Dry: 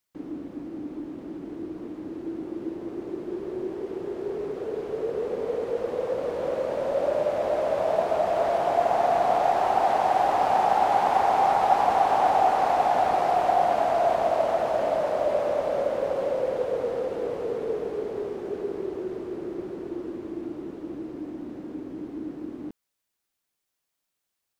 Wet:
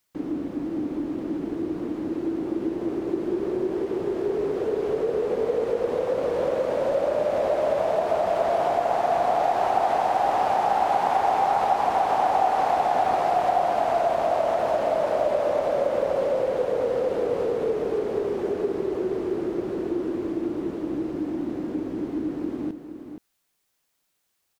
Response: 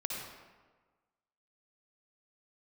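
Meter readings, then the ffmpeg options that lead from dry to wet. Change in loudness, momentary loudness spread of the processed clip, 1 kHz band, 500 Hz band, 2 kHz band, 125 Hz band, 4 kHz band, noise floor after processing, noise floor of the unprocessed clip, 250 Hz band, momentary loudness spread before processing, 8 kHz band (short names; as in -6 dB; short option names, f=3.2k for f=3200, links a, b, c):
+0.5 dB, 8 LU, 0.0 dB, +2.0 dB, +0.5 dB, +3.5 dB, +0.5 dB, -74 dBFS, -82 dBFS, +6.0 dB, 15 LU, n/a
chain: -filter_complex "[0:a]acompressor=threshold=-30dB:ratio=2.5,asplit=2[a][b];[b]aecho=0:1:472:0.335[c];[a][c]amix=inputs=2:normalize=0,volume=7dB"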